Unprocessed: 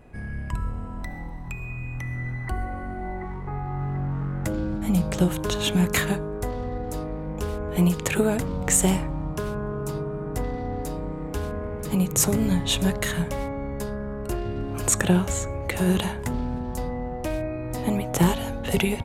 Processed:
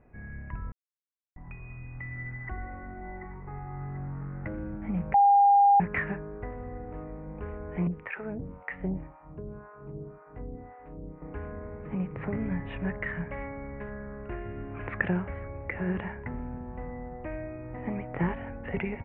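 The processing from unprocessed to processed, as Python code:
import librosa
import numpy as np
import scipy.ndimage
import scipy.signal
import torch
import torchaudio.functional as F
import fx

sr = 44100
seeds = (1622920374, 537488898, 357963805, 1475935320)

y = fx.harmonic_tremolo(x, sr, hz=1.9, depth_pct=100, crossover_hz=610.0, at=(7.87, 11.22))
y = fx.high_shelf(y, sr, hz=2400.0, db=11.0, at=(13.31, 15.08))
y = fx.edit(y, sr, fx.silence(start_s=0.72, length_s=0.64),
    fx.bleep(start_s=5.14, length_s=0.66, hz=805.0, db=-7.0), tone=tone)
y = scipy.signal.sosfilt(scipy.signal.butter(8, 2400.0, 'lowpass', fs=sr, output='sos'), y)
y = fx.dynamic_eq(y, sr, hz=1900.0, q=2.7, threshold_db=-50.0, ratio=4.0, max_db=7)
y = y * librosa.db_to_amplitude(-9.0)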